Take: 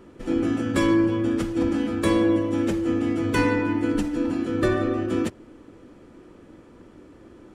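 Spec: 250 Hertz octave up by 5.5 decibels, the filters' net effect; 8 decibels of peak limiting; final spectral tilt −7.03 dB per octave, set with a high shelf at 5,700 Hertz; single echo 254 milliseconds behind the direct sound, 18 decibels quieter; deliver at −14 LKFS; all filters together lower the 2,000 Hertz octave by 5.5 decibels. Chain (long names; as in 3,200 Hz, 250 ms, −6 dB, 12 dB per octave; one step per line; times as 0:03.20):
parametric band 250 Hz +7.5 dB
parametric band 2,000 Hz −8 dB
high-shelf EQ 5,700 Hz +4 dB
brickwall limiter −13.5 dBFS
single-tap delay 254 ms −18 dB
level +8 dB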